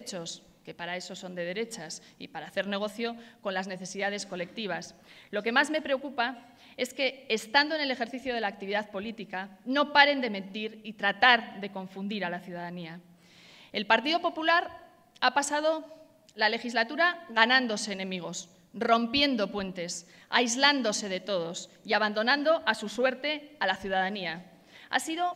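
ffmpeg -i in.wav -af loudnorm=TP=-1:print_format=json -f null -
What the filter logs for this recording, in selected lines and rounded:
"input_i" : "-28.5",
"input_tp" : "-3.2",
"input_lra" : "4.5",
"input_thresh" : "-39.2",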